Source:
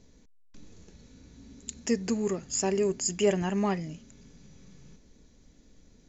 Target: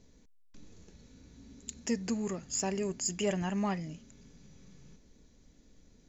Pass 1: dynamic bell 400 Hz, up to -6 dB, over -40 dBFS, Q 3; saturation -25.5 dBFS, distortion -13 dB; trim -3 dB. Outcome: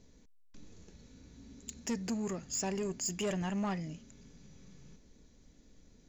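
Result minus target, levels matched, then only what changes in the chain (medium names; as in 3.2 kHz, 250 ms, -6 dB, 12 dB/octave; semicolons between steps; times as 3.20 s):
saturation: distortion +15 dB
change: saturation -15 dBFS, distortion -28 dB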